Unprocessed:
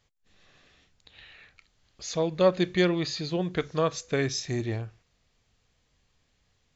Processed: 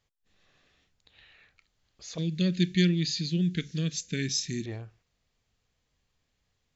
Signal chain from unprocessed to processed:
0:02.18–0:04.66: drawn EQ curve 120 Hz 0 dB, 170 Hz +13 dB, 360 Hz 0 dB, 720 Hz −23 dB, 1,100 Hz −26 dB, 1,600 Hz 0 dB, 2,800 Hz +7 dB, 8,200 Hz +11 dB
level −6.5 dB

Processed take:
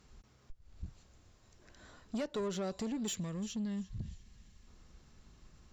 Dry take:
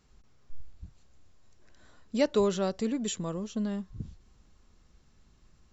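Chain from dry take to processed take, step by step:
on a send: delay with a high-pass on its return 344 ms, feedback 32%, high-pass 2,100 Hz, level −18 dB
on the sum: downward compressor 4 to 1, threshold −35 dBFS, peak gain reduction 12.5 dB
tube saturation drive 35 dB, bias 0.25
gain on a spectral selection 0:03.15–0:04.67, 240–1,600 Hz −7 dB
level +3.5 dB

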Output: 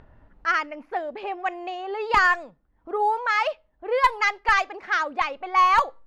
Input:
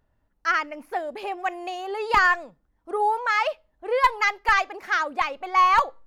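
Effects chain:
upward compression, threshold −37 dBFS
low-pass that shuts in the quiet parts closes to 2,300 Hz, open at −14.5 dBFS

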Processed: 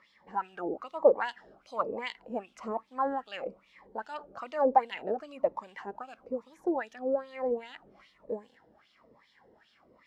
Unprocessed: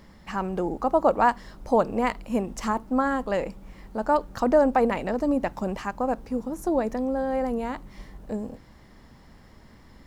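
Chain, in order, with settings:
LFO wah 2.5 Hz 440–3,500 Hz, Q 4.1
phaser whose notches keep moving one way falling 1.1 Hz
level +6 dB

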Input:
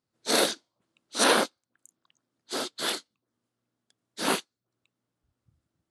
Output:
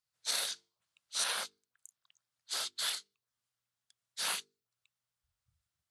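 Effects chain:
guitar amp tone stack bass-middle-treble 10-0-10
mains-hum notches 50/100/150/200/250/300/350/400/450 Hz
downward compressor 6 to 1, threshold −32 dBFS, peak gain reduction 10.5 dB
level +1 dB

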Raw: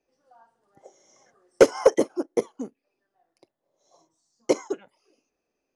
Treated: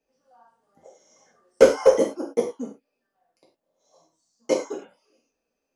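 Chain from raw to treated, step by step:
reverb whose tail is shaped and stops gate 130 ms falling, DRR −2.5 dB
level −4 dB

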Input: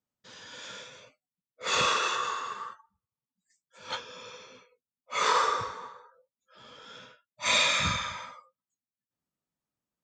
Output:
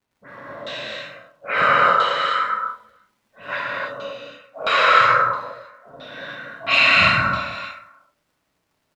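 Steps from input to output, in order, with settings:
in parallel at +1.5 dB: downward compressor, threshold −39 dBFS, peak gain reduction 17 dB
on the sum: all-pass dispersion highs, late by 107 ms, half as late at 2,700 Hz
on a send: single-tap delay 340 ms −20 dB
on the sum: change of speed 1.12×
auto-filter low-pass saw down 1.5 Hz 540–3,700 Hz
surface crackle 170 per second −54 dBFS
reverb whose tail is shaped and stops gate 340 ms flat, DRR −5 dB
one half of a high-frequency compander decoder only
level +1.5 dB

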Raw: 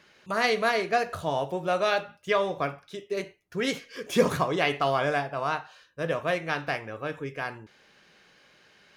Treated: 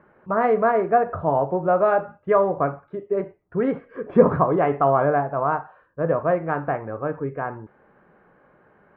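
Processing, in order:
low-pass filter 1,300 Hz 24 dB per octave
level +7.5 dB

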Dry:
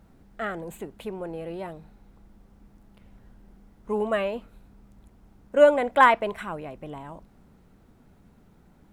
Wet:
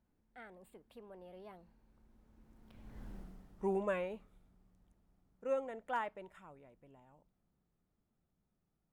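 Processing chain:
source passing by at 0:03.11, 31 m/s, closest 4.5 metres
level +4 dB

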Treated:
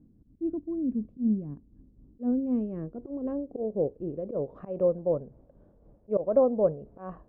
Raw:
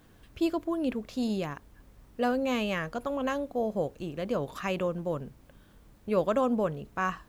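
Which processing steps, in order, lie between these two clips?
volume swells 101 ms
amplitude tremolo 3.9 Hz, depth 50%
low-pass filter sweep 250 Hz → 580 Hz, 0:01.53–0:05.00

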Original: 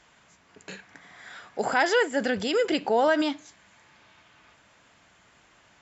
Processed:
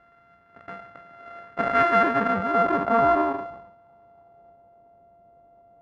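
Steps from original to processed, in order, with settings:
samples sorted by size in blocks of 64 samples
low-pass filter sweep 1,600 Hz → 690 Hz, 0:02.00–0:04.82
level that may fall only so fast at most 66 dB per second

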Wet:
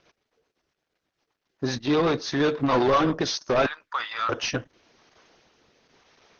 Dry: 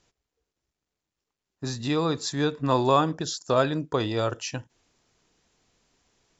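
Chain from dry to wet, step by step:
0:01.78–0:02.32: downward expander −26 dBFS
0:03.66–0:04.29: four-pole ladder high-pass 1,100 Hz, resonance 45%
rotating-speaker cabinet horn 8 Hz, later 1 Hz, at 0:03.01
mid-hump overdrive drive 28 dB, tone 1,600 Hz, clips at −8 dBFS
linear-phase brick-wall low-pass 6,600 Hz
level −3 dB
Opus 10 kbit/s 48,000 Hz

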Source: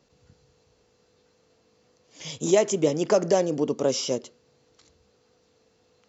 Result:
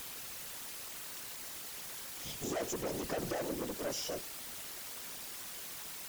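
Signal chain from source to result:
bit-depth reduction 6 bits, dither triangular
tube saturation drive 27 dB, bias 0.5
random phases in short frames
level −6.5 dB

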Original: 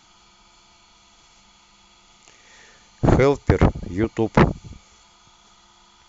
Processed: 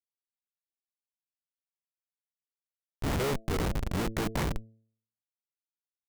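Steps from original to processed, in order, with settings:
pitch-shifted copies added −12 semitones −9 dB, +3 semitones −17 dB
comparator with hysteresis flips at −28 dBFS
hum removal 111.3 Hz, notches 6
level −5 dB

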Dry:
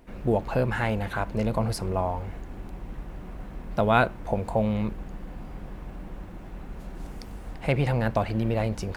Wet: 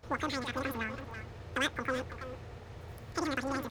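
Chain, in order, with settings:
hard clipping −13.5 dBFS, distortion −22 dB
change of speed 2.42×
far-end echo of a speakerphone 330 ms, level −7 dB
level −9 dB

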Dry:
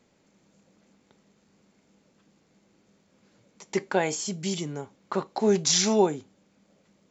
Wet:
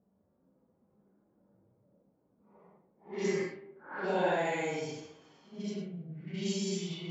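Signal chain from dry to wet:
extreme stretch with random phases 4.5×, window 0.10 s, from 0:03.03
hum removal 75.79 Hz, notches 37
low-pass that shuts in the quiet parts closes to 1,200 Hz, open at −22 dBFS
spring reverb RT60 1.2 s, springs 33 ms, DRR 20 dB
low-pass that shuts in the quiet parts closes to 1,000 Hz, open at −22 dBFS
level −6 dB

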